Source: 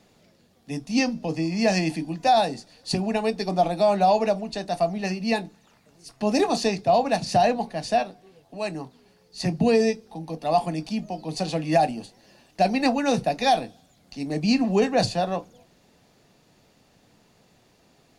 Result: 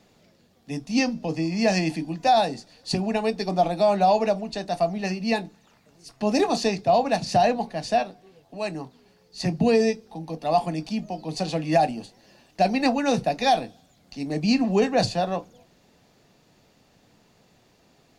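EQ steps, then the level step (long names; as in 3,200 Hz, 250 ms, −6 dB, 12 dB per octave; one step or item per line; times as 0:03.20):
parametric band 10,000 Hz −4.5 dB 0.4 octaves
0.0 dB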